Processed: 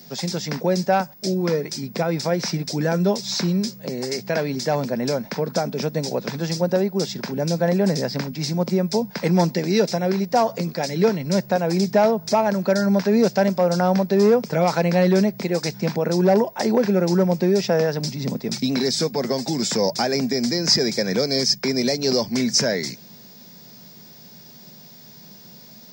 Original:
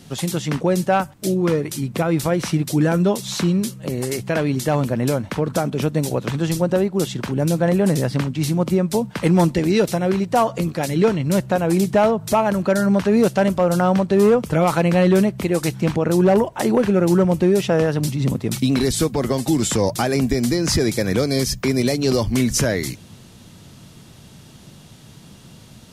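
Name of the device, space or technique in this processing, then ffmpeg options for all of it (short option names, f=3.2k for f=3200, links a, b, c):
old television with a line whistle: -af "highpass=f=170:w=0.5412,highpass=f=170:w=1.3066,equalizer=f=310:t=q:w=4:g=-9,equalizer=f=1.2k:t=q:w=4:g=-8,equalizer=f=3k:t=q:w=4:g=-10,equalizer=f=5.1k:t=q:w=4:g=10,lowpass=f=6.7k:w=0.5412,lowpass=f=6.7k:w=1.3066,aeval=exprs='val(0)+0.00562*sin(2*PI*15625*n/s)':c=same"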